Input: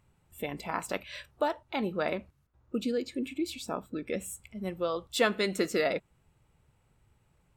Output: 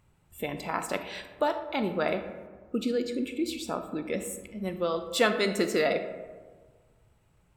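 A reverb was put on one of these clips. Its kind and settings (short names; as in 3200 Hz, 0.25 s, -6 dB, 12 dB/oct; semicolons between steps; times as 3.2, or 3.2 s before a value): digital reverb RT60 1.5 s, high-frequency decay 0.4×, pre-delay 0 ms, DRR 8 dB; gain +2 dB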